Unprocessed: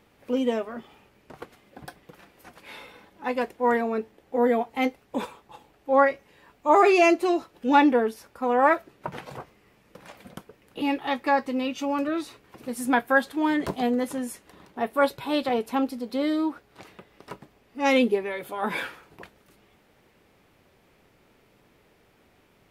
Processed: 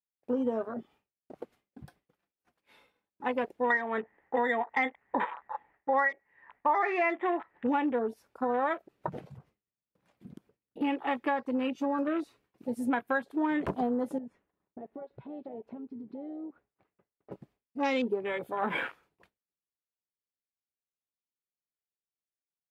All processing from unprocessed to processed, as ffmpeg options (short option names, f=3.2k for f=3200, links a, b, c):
-filter_complex "[0:a]asettb=1/sr,asplit=3[a][b][c];[a]atrim=end=3.704[d];[b]atrim=start=3.7:end=7.67,asetpts=PTS-STARTPTS,afade=t=in:d=0.004:c=qsin,afade=t=out:st=3.966:d=0.004:c=qsin,lowpass=f=1.9k:t=q:w=11,equalizer=f=900:t=o:w=0.73:g=10[e];[c]atrim=start=7.666[f];[d][e]acrossfade=d=0.004:c1=hsin:c2=qsin[g];[g][f]acrossfade=d=0.004:c1=qsin:c2=hsin,asettb=1/sr,asplit=3[h][i][j];[h]atrim=end=9.244[k];[i]atrim=start=9.24:end=10.81,asetpts=PTS-STARTPTS,afade=t=in:d=0.004:c=qsin,afade=t=out:st=1.566:d=0.004:c=qsin,highpass=f=100:p=1,lowshelf=f=230:g=10.5,acompressor=threshold=-41dB:ratio=5:attack=3.2:release=140:knee=1:detection=peak[l];[j]atrim=start=10.806[m];[k][l]acrossfade=d=0.004:c1=hsin:c2=qsin[n];[n][m]acrossfade=d=0.004:c1=qsin:c2=hsin,asettb=1/sr,asplit=3[o][p][q];[o]atrim=end=14.184[r];[p]atrim=start=14.18:end=17.32,asetpts=PTS-STARTPTS,afade=t=in:d=0.004:c=qsin,afade=t=out:st=3.136:d=0.004:c=qsin,lowpass=1.9k,acompressor=threshold=-38dB:ratio=8:attack=3.2:release=140:knee=1:detection=peak[s];[q]atrim=start=17.316[t];[r][s]acrossfade=d=0.004:c1=hsin:c2=qsin[u];[u][t]acrossfade=d=0.004:c1=qsin:c2=hsin,afwtdn=0.0178,agate=range=-33dB:threshold=-56dB:ratio=3:detection=peak,acompressor=threshold=-26dB:ratio=6"